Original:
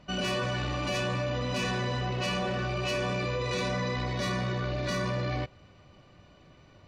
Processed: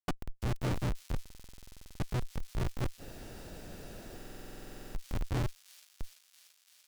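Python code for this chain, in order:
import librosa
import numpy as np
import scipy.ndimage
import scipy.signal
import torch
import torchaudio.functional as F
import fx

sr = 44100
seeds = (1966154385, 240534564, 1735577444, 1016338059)

y = scipy.signal.sosfilt(scipy.signal.butter(4, 110.0, 'highpass', fs=sr, output='sos'), x)
y = fx.over_compress(y, sr, threshold_db=-38.0, ratio=-0.5)
y = fx.tremolo_shape(y, sr, shape='triangle', hz=4.7, depth_pct=60)
y = fx.schmitt(y, sr, flips_db=-37.0)
y = fx.echo_wet_highpass(y, sr, ms=338, feedback_pct=79, hz=4100.0, wet_db=-18.0)
y = fx.fold_sine(y, sr, drive_db=9, ceiling_db=-38.5)
y = fx.spec_freeze(y, sr, seeds[0], at_s=3.03, hold_s=1.84)
y = fx.buffer_glitch(y, sr, at_s=(1.21, 4.16), block=2048, repeats=16)
y = y * 10.0 ** (10.0 / 20.0)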